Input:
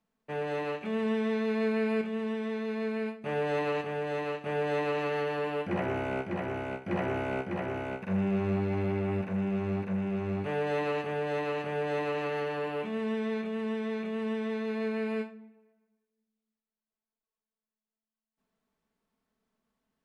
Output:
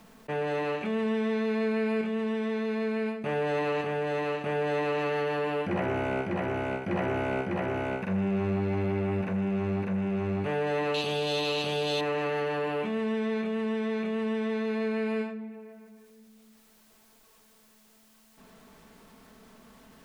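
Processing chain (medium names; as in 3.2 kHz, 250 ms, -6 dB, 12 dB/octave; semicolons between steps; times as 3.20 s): 10.94–12.01 s: resonant high shelf 2.6 kHz +12 dB, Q 3; level flattener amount 50%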